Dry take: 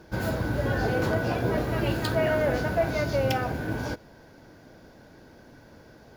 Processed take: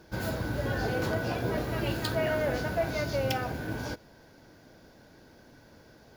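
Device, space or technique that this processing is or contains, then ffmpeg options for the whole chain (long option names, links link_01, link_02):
presence and air boost: -af "equalizer=frequency=4400:width_type=o:width=1.9:gain=3.5,highshelf=frequency=11000:gain=6.5,volume=-4.5dB"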